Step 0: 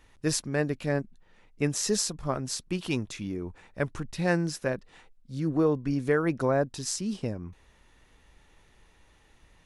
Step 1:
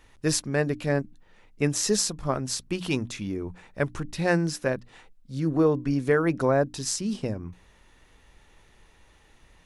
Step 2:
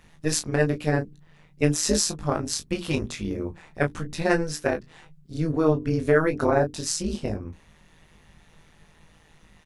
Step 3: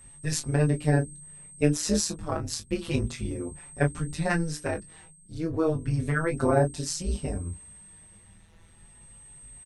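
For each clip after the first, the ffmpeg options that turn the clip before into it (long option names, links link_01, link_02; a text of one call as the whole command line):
ffmpeg -i in.wav -af "bandreject=frequency=60:width_type=h:width=6,bandreject=frequency=120:width_type=h:width=6,bandreject=frequency=180:width_type=h:width=6,bandreject=frequency=240:width_type=h:width=6,bandreject=frequency=300:width_type=h:width=6,volume=3dB" out.wav
ffmpeg -i in.wav -filter_complex "[0:a]tremolo=f=160:d=0.889,asplit=2[link_01][link_02];[link_02]aecho=0:1:20|34:0.531|0.266[link_03];[link_01][link_03]amix=inputs=2:normalize=0,volume=4dB" out.wav
ffmpeg -i in.wav -filter_complex "[0:a]equalizer=frequency=66:width=0.54:gain=9.5,aeval=exprs='val(0)+0.00708*sin(2*PI*8300*n/s)':channel_layout=same,asplit=2[link_01][link_02];[link_02]adelay=5.5,afreqshift=0.33[link_03];[link_01][link_03]amix=inputs=2:normalize=1,volume=-1.5dB" out.wav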